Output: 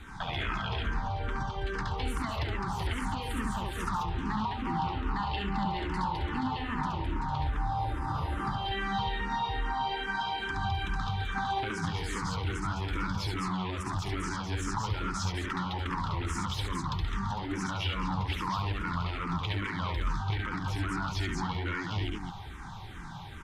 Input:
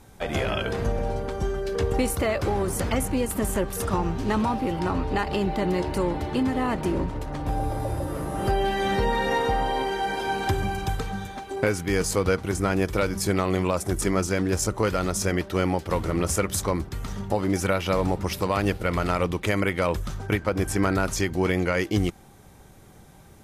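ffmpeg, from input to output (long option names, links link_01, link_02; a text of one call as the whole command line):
ffmpeg -i in.wav -filter_complex "[0:a]acrossover=split=480|3000[link_01][link_02][link_03];[link_02]acompressor=threshold=-29dB:ratio=6[link_04];[link_01][link_04][link_03]amix=inputs=3:normalize=0,aeval=exprs='0.398*sin(PI/2*2.82*val(0)/0.398)':channel_layout=same,alimiter=limit=-16dB:level=0:latency=1,firequalizer=gain_entry='entry(110,0);entry(190,-4);entry(280,-5);entry(550,-16);entry(900,7);entry(2300,1);entry(3400,7);entry(5700,-3);entry(11000,-14)':delay=0.05:min_phase=1,acompressor=threshold=-24dB:ratio=6,highshelf=frequency=3800:gain=-6,aecho=1:1:69.97|209.9:0.708|0.631,asplit=2[link_05][link_06];[link_06]afreqshift=-2.4[link_07];[link_05][link_07]amix=inputs=2:normalize=1,volume=-4dB" out.wav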